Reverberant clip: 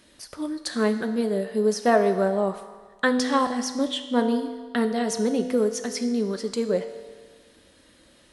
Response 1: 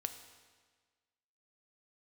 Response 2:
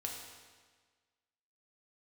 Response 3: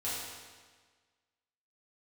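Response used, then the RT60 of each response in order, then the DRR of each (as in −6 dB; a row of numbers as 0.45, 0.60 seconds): 1; 1.5, 1.5, 1.5 seconds; 7.5, −0.5, −10.0 decibels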